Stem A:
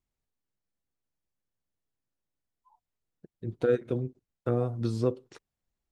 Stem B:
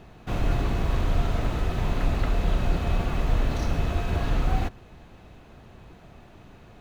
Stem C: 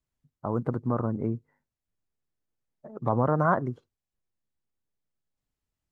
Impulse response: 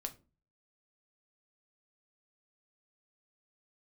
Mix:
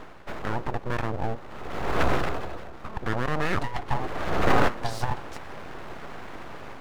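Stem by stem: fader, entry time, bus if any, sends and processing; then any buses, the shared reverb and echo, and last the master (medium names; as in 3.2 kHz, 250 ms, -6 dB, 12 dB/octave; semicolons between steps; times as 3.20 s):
+1.0 dB, 0.00 s, bus A, no send, frequency weighting A; three bands expanded up and down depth 40%
+2.5 dB, 0.00 s, no bus, no send, peak limiter -20.5 dBFS, peak gain reduction 8.5 dB; auto duck -24 dB, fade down 0.75 s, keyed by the third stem
-6.0 dB, 0.00 s, bus A, no send, none
bus A: 0.0 dB, compressor with a negative ratio -31 dBFS, ratio -0.5; peak limiter -25.5 dBFS, peak gain reduction 8.5 dB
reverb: none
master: high-order bell 710 Hz +10.5 dB 2.6 oct; level rider gain up to 4 dB; full-wave rectifier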